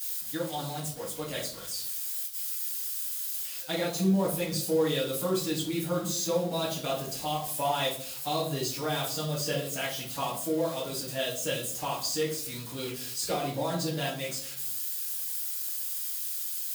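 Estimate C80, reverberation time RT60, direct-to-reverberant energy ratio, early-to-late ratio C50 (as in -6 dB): 11.0 dB, 0.60 s, -9.0 dB, 6.0 dB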